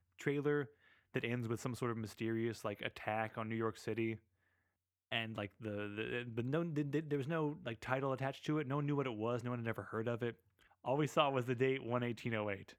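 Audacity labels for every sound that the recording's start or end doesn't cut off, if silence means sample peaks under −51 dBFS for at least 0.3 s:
1.140000	4.160000	sound
5.120000	10.330000	sound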